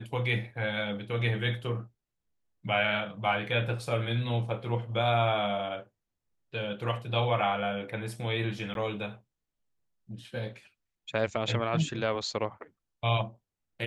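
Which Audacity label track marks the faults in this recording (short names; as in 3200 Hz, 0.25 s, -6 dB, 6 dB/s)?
8.740000	8.750000	gap 12 ms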